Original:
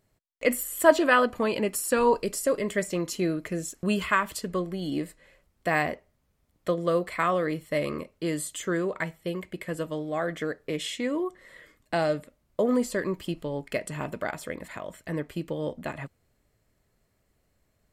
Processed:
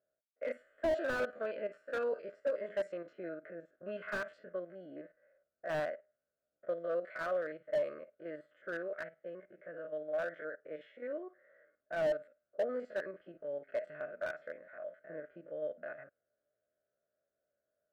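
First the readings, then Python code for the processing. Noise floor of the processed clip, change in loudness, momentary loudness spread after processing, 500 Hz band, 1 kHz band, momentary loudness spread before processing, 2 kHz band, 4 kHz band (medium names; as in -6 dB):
under -85 dBFS, -11.5 dB, 13 LU, -9.0 dB, -16.5 dB, 12 LU, -12.0 dB, -19.0 dB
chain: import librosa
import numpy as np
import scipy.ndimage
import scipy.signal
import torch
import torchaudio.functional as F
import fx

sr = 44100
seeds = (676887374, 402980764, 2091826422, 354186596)

y = fx.spec_steps(x, sr, hold_ms=50)
y = fx.double_bandpass(y, sr, hz=950.0, octaves=1.3)
y = fx.env_lowpass(y, sr, base_hz=1100.0, full_db=-29.0)
y = fx.slew_limit(y, sr, full_power_hz=24.0)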